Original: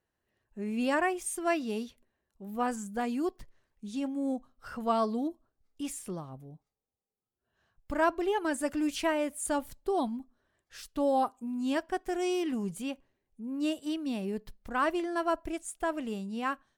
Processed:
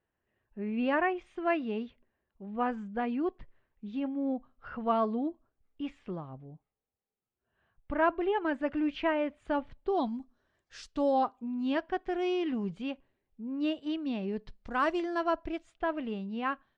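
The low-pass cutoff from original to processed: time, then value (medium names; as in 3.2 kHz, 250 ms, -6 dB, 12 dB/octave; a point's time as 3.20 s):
low-pass 24 dB/octave
9.77 s 3 kHz
10.18 s 6.8 kHz
10.91 s 6.8 kHz
11.36 s 3.9 kHz
14.21 s 3.9 kHz
14.88 s 6.5 kHz
15.77 s 3.6 kHz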